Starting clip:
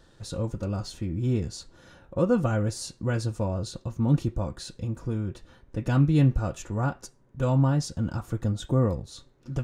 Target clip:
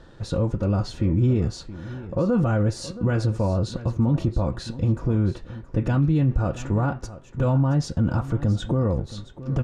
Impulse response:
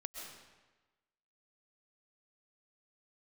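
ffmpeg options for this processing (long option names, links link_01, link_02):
-af "alimiter=limit=-22dB:level=0:latency=1:release=58,aemphasis=mode=reproduction:type=75fm,aecho=1:1:673:0.168,volume=8.5dB"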